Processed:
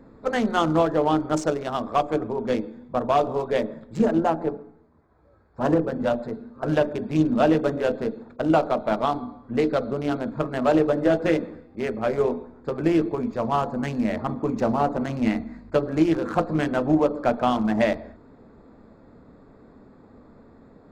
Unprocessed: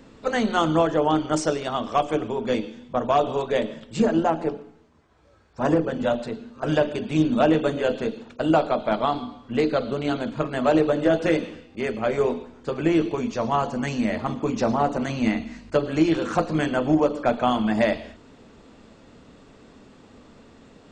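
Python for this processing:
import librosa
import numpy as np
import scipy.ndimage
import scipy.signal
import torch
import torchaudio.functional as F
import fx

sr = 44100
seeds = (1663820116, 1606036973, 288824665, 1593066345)

y = fx.wiener(x, sr, points=15)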